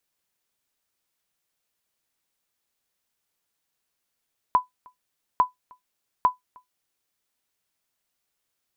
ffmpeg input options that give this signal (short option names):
-f lavfi -i "aevalsrc='0.335*(sin(2*PI*1000*mod(t,0.85))*exp(-6.91*mod(t,0.85)/0.14)+0.0316*sin(2*PI*1000*max(mod(t,0.85)-0.31,0))*exp(-6.91*max(mod(t,0.85)-0.31,0)/0.14))':d=2.55:s=44100"